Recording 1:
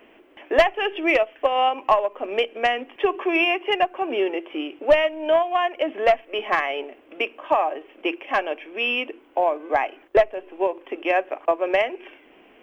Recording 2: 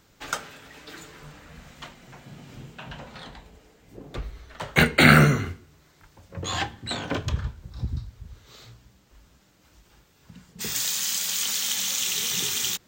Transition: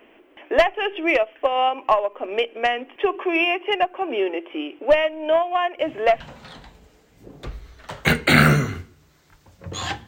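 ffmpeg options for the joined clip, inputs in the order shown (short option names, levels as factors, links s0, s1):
-filter_complex "[1:a]asplit=2[s0][s1];[0:a]apad=whole_dur=10.07,atrim=end=10.07,atrim=end=6.202[s2];[s1]atrim=start=2.908:end=6.78[s3];[s0]atrim=start=2.5:end=2.91,asetpts=PTS-STARTPTS,volume=0.422,afade=t=in:d=0.004:c=hsin,afade=t=out:st=0.406:d=0.004:c=hsin,adelay=5790[s4];[s2][s3]acrossfade=d=0.004:c1=hsin:c2=hsin[s5];[s5][s4]amix=inputs=2:normalize=0"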